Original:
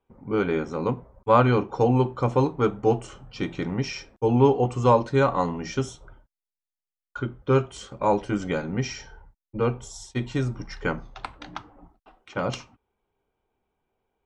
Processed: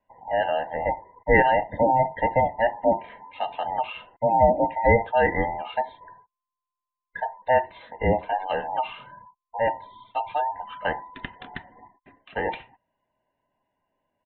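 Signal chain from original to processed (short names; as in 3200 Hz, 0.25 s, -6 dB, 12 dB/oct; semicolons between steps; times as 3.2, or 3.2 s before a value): band inversion scrambler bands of 1000 Hz; spectral gate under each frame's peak -30 dB strong; downsampling 8000 Hz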